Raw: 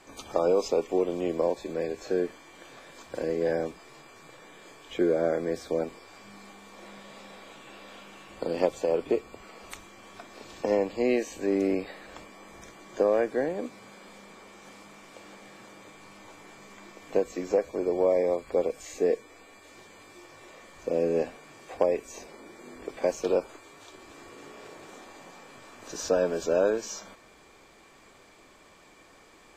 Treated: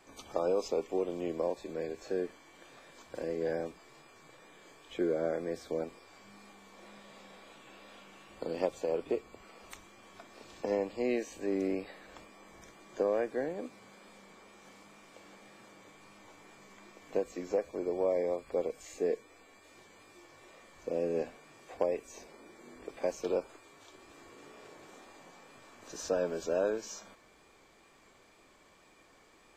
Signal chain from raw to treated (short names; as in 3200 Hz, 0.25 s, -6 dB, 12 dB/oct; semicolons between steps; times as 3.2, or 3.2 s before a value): wow and flutter 32 cents; gain -6.5 dB